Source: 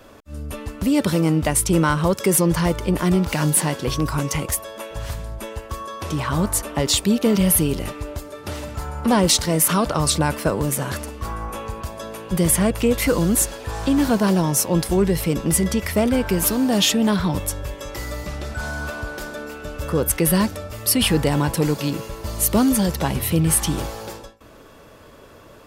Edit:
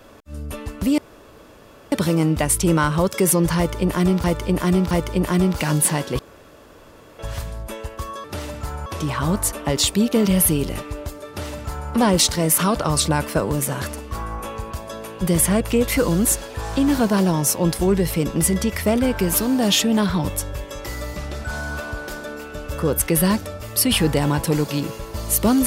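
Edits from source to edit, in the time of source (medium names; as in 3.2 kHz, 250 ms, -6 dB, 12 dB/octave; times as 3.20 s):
0.98 s: insert room tone 0.94 s
2.63–3.30 s: loop, 3 plays
3.91–4.91 s: room tone
8.38–9.00 s: copy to 5.96 s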